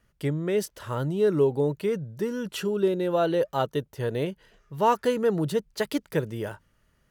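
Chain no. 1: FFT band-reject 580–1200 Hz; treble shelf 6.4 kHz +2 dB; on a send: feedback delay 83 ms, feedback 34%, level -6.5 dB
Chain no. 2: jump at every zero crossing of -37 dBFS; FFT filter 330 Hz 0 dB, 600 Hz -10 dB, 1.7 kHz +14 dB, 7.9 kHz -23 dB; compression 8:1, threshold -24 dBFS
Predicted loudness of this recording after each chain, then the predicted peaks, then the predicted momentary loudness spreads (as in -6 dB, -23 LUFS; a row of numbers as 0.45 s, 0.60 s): -26.5 LUFS, -30.0 LUFS; -11.5 dBFS, -15.0 dBFS; 9 LU, 4 LU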